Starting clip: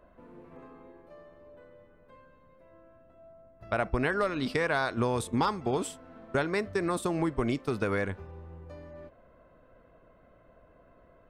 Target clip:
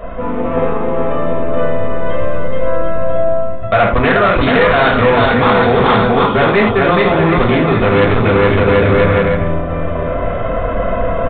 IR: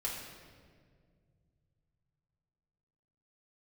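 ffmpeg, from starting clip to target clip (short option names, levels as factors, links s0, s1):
-filter_complex "[0:a]aecho=1:1:430|752.5|994.4|1176|1312:0.631|0.398|0.251|0.158|0.1,areverse,acompressor=threshold=0.0158:ratio=10,areverse[s0];[1:a]atrim=start_sample=2205,afade=t=out:st=0.16:d=0.01,atrim=end_sample=7497[s1];[s0][s1]afir=irnorm=-1:irlink=0,aresample=8000,aeval=exprs='clip(val(0),-1,0.0112)':c=same,aresample=44100,apsyclip=37.6,dynaudnorm=f=110:g=7:m=2.82,volume=0.891"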